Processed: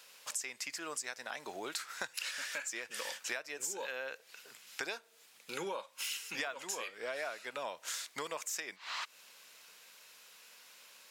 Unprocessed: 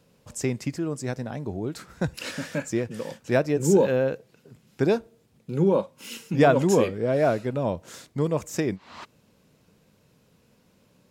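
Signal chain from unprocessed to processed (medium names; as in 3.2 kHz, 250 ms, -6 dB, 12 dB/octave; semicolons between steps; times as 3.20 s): high-pass 1.5 kHz 12 dB/octave; compression 12:1, threshold -49 dBFS, peak gain reduction 24.5 dB; trim +12.5 dB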